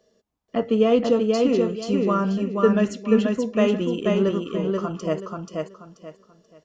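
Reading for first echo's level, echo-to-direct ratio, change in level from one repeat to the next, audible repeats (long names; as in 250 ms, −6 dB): −3.0 dB, −2.5 dB, −11.5 dB, 3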